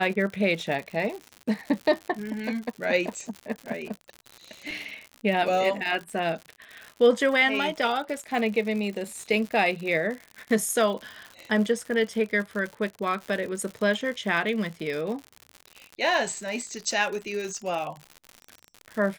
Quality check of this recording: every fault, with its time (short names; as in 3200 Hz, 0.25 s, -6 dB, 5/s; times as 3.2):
crackle 110/s -32 dBFS